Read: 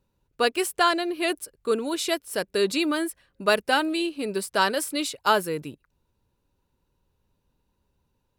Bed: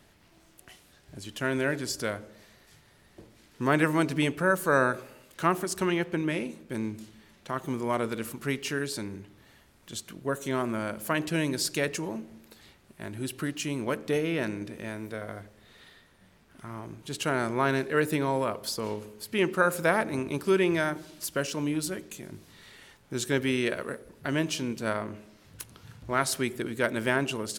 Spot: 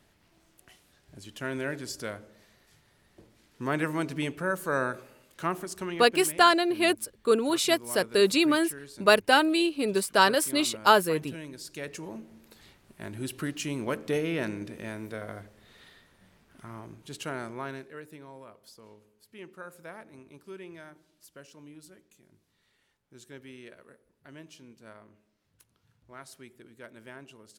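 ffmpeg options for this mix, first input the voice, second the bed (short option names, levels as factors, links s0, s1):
-filter_complex "[0:a]adelay=5600,volume=1.19[s0];[1:a]volume=2.37,afade=t=out:st=5.52:d=0.83:silence=0.375837,afade=t=in:st=11.65:d=1.01:silence=0.237137,afade=t=out:st=16.32:d=1.7:silence=0.112202[s1];[s0][s1]amix=inputs=2:normalize=0"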